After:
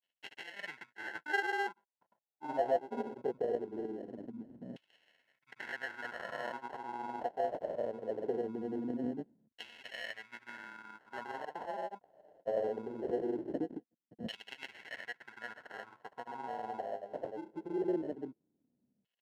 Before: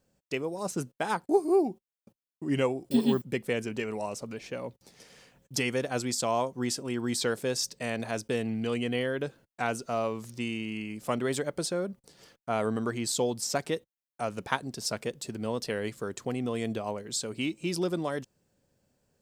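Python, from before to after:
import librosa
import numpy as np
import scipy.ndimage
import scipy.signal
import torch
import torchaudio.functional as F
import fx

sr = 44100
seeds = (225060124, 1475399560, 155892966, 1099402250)

y = fx.granulator(x, sr, seeds[0], grain_ms=100.0, per_s=20.0, spray_ms=100.0, spread_st=0)
y = fx.sample_hold(y, sr, seeds[1], rate_hz=1200.0, jitter_pct=0)
y = fx.filter_lfo_bandpass(y, sr, shape='saw_down', hz=0.21, low_hz=210.0, high_hz=3000.0, q=3.4)
y = y * librosa.db_to_amplitude(2.0)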